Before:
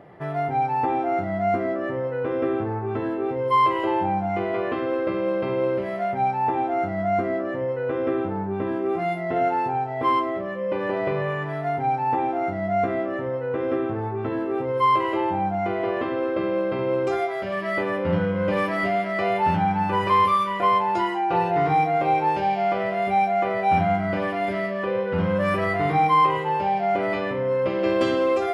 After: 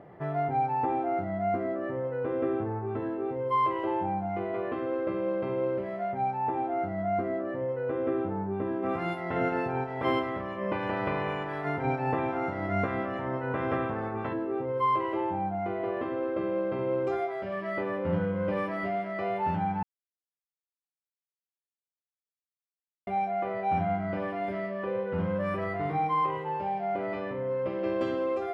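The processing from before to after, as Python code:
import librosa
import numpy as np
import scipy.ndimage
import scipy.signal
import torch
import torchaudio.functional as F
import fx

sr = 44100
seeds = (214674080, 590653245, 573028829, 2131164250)

y = fx.spec_clip(x, sr, under_db=18, at=(8.82, 14.32), fade=0.02)
y = fx.edit(y, sr, fx.silence(start_s=19.83, length_s=3.24), tone=tone)
y = fx.high_shelf(y, sr, hz=2800.0, db=-11.5)
y = fx.rider(y, sr, range_db=10, speed_s=2.0)
y = y * librosa.db_to_amplitude(-6.0)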